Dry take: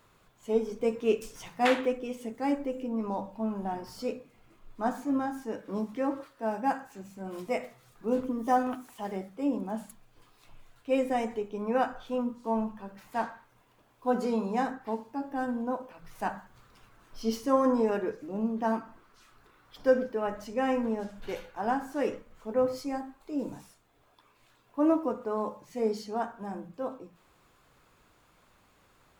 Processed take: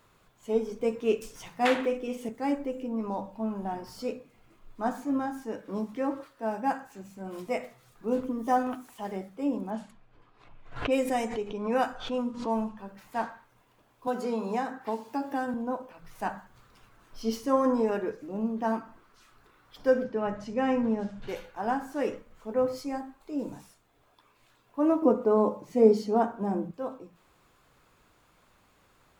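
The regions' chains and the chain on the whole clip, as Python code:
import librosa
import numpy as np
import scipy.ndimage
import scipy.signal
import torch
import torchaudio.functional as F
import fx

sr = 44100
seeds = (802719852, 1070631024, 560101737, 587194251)

y = fx.chain(x, sr, fx.doubler(ms=46.0, db=-8.0),
    fx.band_squash(depth_pct=40), at=(1.75, 2.29))
y = fx.chain(y, sr, fx.env_lowpass(base_hz=1600.0, full_db=-24.0),
    fx.high_shelf(hz=4000.0, db=9.5),
    fx.pre_swell(db_per_s=92.0), at=(9.7, 12.78))
y = fx.chain(y, sr, fx.highpass(hz=240.0, slope=6),
    fx.band_squash(depth_pct=100), at=(14.07, 15.54))
y = fx.chain(y, sr, fx.lowpass(hz=6500.0, slope=12),
    fx.peak_eq(hz=150.0, db=11.0, octaves=0.91), at=(20.04, 21.28))
y = fx.chain(y, sr, fx.peak_eq(hz=310.0, db=11.0, octaves=2.7),
    fx.notch(hz=1700.0, q=12.0), at=(25.02, 26.71))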